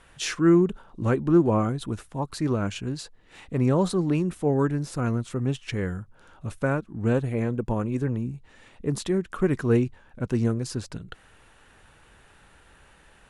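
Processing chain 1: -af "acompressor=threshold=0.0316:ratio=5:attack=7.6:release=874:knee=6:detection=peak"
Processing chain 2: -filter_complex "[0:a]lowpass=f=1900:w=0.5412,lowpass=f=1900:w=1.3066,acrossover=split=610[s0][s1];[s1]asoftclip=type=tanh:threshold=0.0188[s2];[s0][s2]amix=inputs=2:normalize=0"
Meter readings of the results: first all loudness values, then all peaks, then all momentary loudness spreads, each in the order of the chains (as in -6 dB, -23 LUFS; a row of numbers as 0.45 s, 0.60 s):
-37.0 LUFS, -26.5 LUFS; -20.5 dBFS, -9.0 dBFS; 21 LU, 14 LU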